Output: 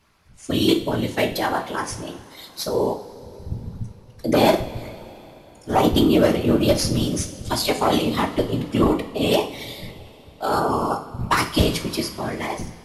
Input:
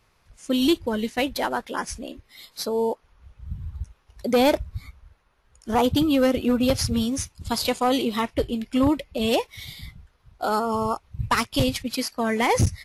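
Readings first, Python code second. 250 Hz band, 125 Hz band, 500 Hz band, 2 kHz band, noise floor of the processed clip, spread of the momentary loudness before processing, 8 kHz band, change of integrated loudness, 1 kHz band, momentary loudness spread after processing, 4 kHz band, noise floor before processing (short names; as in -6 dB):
+1.5 dB, +4.5 dB, +3.0 dB, +1.5 dB, -48 dBFS, 17 LU, +2.0 dB, +2.5 dB, +2.5 dB, 18 LU, +3.0 dB, -64 dBFS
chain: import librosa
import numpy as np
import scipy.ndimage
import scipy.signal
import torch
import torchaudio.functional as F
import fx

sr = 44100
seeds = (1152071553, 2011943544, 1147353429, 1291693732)

y = fx.fade_out_tail(x, sr, length_s=1.1)
y = fx.whisperise(y, sr, seeds[0])
y = fx.rev_double_slope(y, sr, seeds[1], early_s=0.43, late_s=3.8, knee_db=-18, drr_db=4.5)
y = y * 10.0 ** (1.5 / 20.0)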